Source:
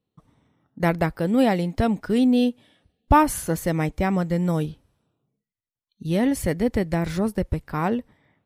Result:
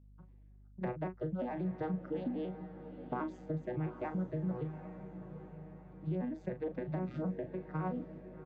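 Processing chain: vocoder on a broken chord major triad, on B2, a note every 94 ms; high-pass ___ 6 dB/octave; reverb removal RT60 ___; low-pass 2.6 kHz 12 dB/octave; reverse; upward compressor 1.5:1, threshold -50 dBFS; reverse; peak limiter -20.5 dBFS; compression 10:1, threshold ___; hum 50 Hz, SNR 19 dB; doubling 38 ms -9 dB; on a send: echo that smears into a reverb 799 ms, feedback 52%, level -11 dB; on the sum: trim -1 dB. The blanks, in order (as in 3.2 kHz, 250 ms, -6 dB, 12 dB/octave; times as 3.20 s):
380 Hz, 1.6 s, -33 dBFS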